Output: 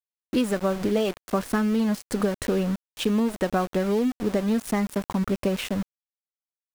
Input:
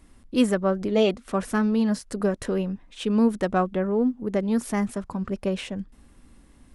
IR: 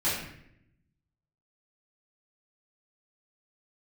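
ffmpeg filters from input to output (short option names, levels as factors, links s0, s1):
-af "acompressor=threshold=0.0562:ratio=10,aeval=exprs='val(0)*gte(abs(val(0)),0.0141)':c=same,volume=1.88"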